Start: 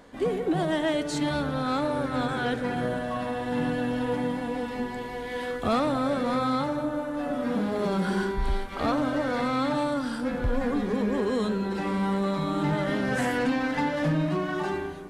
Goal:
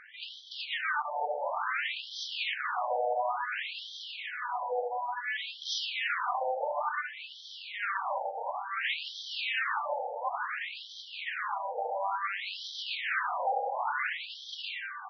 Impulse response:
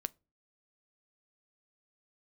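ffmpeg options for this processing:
-filter_complex "[1:a]atrim=start_sample=2205[a];[0:a][a]afir=irnorm=-1:irlink=0,aresample=16000,aeval=exprs='0.158*sin(PI/2*3.98*val(0)/0.158)':c=same,aresample=44100,afftfilt=real='re*between(b*sr/1024,630*pow(4400/630,0.5+0.5*sin(2*PI*0.57*pts/sr))/1.41,630*pow(4400/630,0.5+0.5*sin(2*PI*0.57*pts/sr))*1.41)':imag='im*between(b*sr/1024,630*pow(4400/630,0.5+0.5*sin(2*PI*0.57*pts/sr))/1.41,630*pow(4400/630,0.5+0.5*sin(2*PI*0.57*pts/sr))*1.41)':win_size=1024:overlap=0.75,volume=-5.5dB"

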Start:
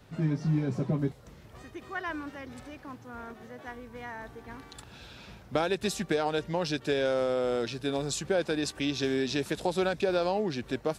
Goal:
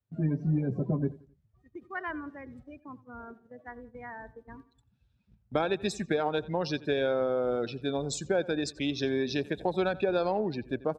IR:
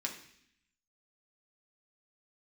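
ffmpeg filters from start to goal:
-filter_complex "[0:a]afftdn=nr=24:nf=-38,agate=range=-12dB:threshold=-48dB:ratio=16:detection=peak,aeval=exprs='0.2*(cos(1*acos(clip(val(0)/0.2,-1,1)))-cos(1*PI/2))+0.00224*(cos(7*acos(clip(val(0)/0.2,-1,1)))-cos(7*PI/2))':c=same,asplit=2[a][b];[b]adelay=88,lowpass=f=4.5k:p=1,volume=-19.5dB,asplit=2[c][d];[d]adelay=88,lowpass=f=4.5k:p=1,volume=0.37,asplit=2[e][f];[f]adelay=88,lowpass=f=4.5k:p=1,volume=0.37[g];[a][c][e][g]amix=inputs=4:normalize=0"

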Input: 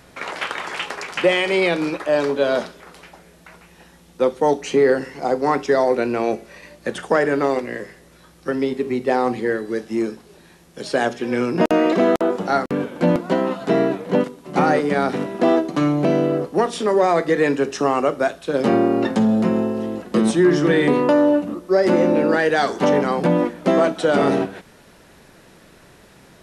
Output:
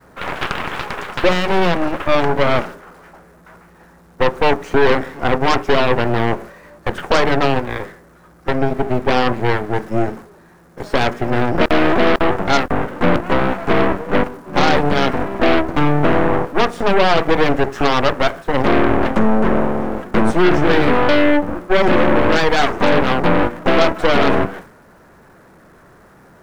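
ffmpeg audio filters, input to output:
-af "aeval=exprs='val(0)+0.5*0.0355*sgn(val(0))':c=same,agate=range=-33dB:threshold=-27dB:ratio=3:detection=peak,highshelf=f=2.1k:t=q:w=1.5:g=-11.5,aeval=exprs='0.668*(cos(1*acos(clip(val(0)/0.668,-1,1)))-cos(1*PI/2))+0.188*(cos(8*acos(clip(val(0)/0.668,-1,1)))-cos(8*PI/2))':c=same,volume=-1dB"

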